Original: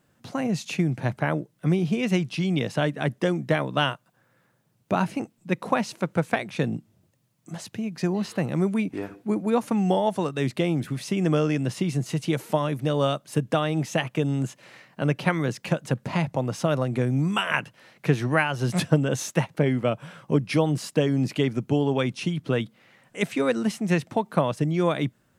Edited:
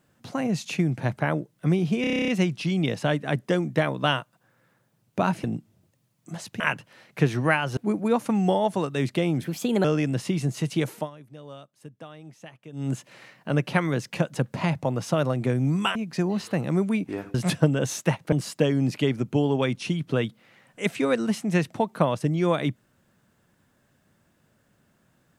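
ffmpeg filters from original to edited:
-filter_complex "[0:a]asplit=20[a][b][c][d][e][f][g][h][i][j][k][l][m][n][o][p][q][r][s][t];[a]atrim=end=2.042[u];[b]atrim=start=2.008:end=2.042[v];[c]atrim=start=2.008:end=2.042[w];[d]atrim=start=2.008:end=2.042[x];[e]atrim=start=2.008:end=2.042[y];[f]atrim=start=2.008:end=2.042[z];[g]atrim=start=2.008:end=2.042[aa];[h]atrim=start=2.008:end=2.042[ab];[i]atrim=start=2.008:end=2.042[ac];[j]atrim=start=2.008:end=5.172[ad];[k]atrim=start=6.638:end=7.802[ae];[l]atrim=start=17.468:end=18.642[af];[m]atrim=start=9.188:end=10.864[ag];[n]atrim=start=10.86:end=11.36,asetpts=PTS-STARTPTS,asetrate=54684,aresample=44100,atrim=end_sample=17782,asetpts=PTS-STARTPTS[ah];[o]atrim=start=11.356:end=12.62,asetpts=PTS-STARTPTS,afade=t=out:st=1.074:d=0.19:silence=0.105925[ai];[p]atrim=start=12.62:end=14.24,asetpts=PTS-STARTPTS,volume=-19.5dB[aj];[q]atrim=start=14.24:end=17.472,asetpts=PTS-STARTPTS,afade=t=in:d=0.19:silence=0.105925[ak];[r]atrim=start=7.798:end=9.192[al];[s]atrim=start=18.638:end=19.622[am];[t]atrim=start=20.688[an];[u][v]acrossfade=d=0.004:c1=hsin:c2=hsin[ao];[ao][w]acrossfade=d=0.004:c1=hsin:c2=hsin[ap];[ap][x]acrossfade=d=0.004:c1=hsin:c2=hsin[aq];[aq][y]acrossfade=d=0.004:c1=hsin:c2=hsin[ar];[ar][z]acrossfade=d=0.004:c1=hsin:c2=hsin[as];[as][aa]acrossfade=d=0.004:c1=hsin:c2=hsin[at];[at][ab]acrossfade=d=0.004:c1=hsin:c2=hsin[au];[au][ac]acrossfade=d=0.004:c1=hsin:c2=hsin[av];[av][ad]acrossfade=d=0.004:c1=hsin:c2=hsin[aw];[aw][ae]acrossfade=d=0.004:c1=hsin:c2=hsin[ax];[ax][af]acrossfade=d=0.004:c1=hsin:c2=hsin[ay];[ay][ag]acrossfade=d=0.004:c1=hsin:c2=hsin[az];[az][ah]acrossfade=d=0.004:c1=hsin:c2=hsin[ba];[ai][aj][ak]concat=n=3:v=0:a=1[bb];[ba][bb]acrossfade=d=0.004:c1=hsin:c2=hsin[bc];[bc][al]acrossfade=d=0.004:c1=hsin:c2=hsin[bd];[bd][am]acrossfade=d=0.004:c1=hsin:c2=hsin[be];[be][an]acrossfade=d=0.004:c1=hsin:c2=hsin"

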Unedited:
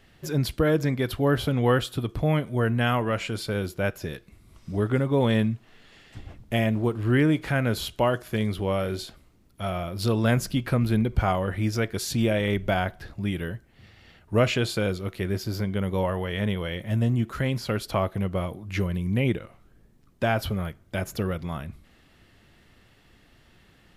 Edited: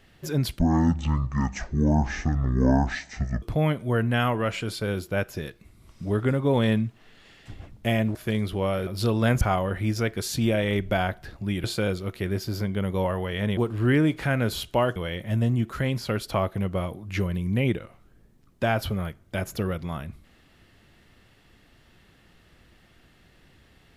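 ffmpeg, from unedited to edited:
-filter_complex "[0:a]asplit=9[a][b][c][d][e][f][g][h][i];[a]atrim=end=0.594[j];[b]atrim=start=0.59:end=2.09,asetpts=PTS-STARTPTS,asetrate=23373,aresample=44100,atrim=end_sample=124811,asetpts=PTS-STARTPTS[k];[c]atrim=start=2.086:end=6.822[l];[d]atrim=start=8.208:end=8.932[m];[e]atrim=start=9.888:end=10.432[n];[f]atrim=start=11.178:end=13.412[o];[g]atrim=start=14.628:end=16.562[p];[h]atrim=start=6.818:end=8.212[q];[i]atrim=start=16.558[r];[j][k]acrossfade=d=0.004:c1=hsin:c2=hsin[s];[s][l]acrossfade=d=0.004:c1=hsin:c2=hsin[t];[t][m]acrossfade=d=0.004:c1=hsin:c2=hsin[u];[u][n]acrossfade=d=0.004:c1=hsin:c2=hsin[v];[v][o]acrossfade=d=0.004:c1=hsin:c2=hsin[w];[w][p]acrossfade=d=0.004:c1=hsin:c2=hsin[x];[x][q]acrossfade=d=0.004:c1=hsin:c2=hsin[y];[y][r]acrossfade=d=0.004:c1=hsin:c2=hsin"

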